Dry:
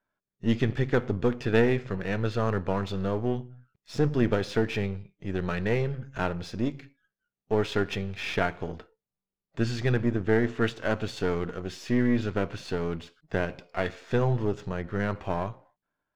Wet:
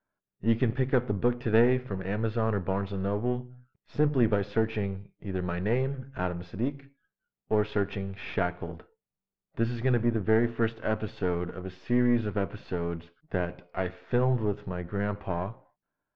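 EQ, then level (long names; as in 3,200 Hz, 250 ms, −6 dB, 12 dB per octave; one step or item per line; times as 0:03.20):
low-pass filter 2,500 Hz 6 dB per octave
high-frequency loss of the air 200 metres
0.0 dB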